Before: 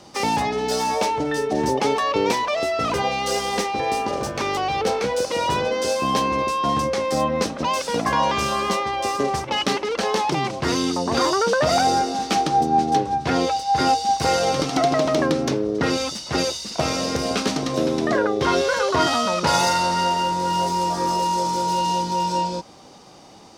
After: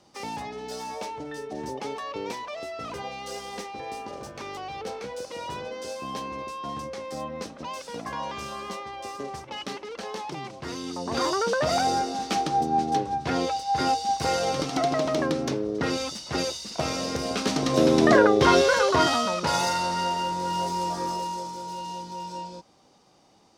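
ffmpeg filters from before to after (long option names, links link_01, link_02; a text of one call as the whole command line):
ffmpeg -i in.wav -af "volume=4dB,afade=type=in:start_time=10.83:duration=0.43:silence=0.421697,afade=type=in:start_time=17.37:duration=0.69:silence=0.334965,afade=type=out:start_time=18.06:duration=1.34:silence=0.316228,afade=type=out:start_time=20.92:duration=0.61:silence=0.421697" out.wav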